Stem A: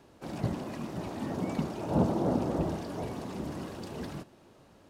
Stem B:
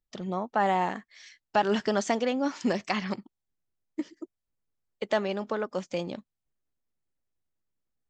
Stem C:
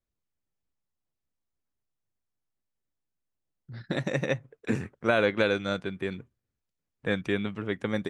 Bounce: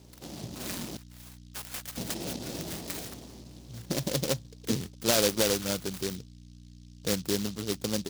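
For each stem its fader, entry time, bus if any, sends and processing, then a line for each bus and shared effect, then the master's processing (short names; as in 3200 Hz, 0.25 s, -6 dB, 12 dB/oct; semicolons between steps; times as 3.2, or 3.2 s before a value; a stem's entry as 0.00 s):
-1.0 dB, 0.00 s, muted 0.97–1.97, no send, compressor 5:1, threshold -39 dBFS, peak gain reduction 16.5 dB; auto duck -16 dB, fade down 0.95 s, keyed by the third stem
-2.5 dB, 0.00 s, no send, inverse Chebyshev band-stop 110–730 Hz, stop band 50 dB; endless phaser -2.9 Hz
-5.5 dB, 0.00 s, no send, hum 60 Hz, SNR 14 dB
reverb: off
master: HPF 65 Hz; AGC gain up to 4.5 dB; noise-modulated delay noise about 4500 Hz, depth 0.18 ms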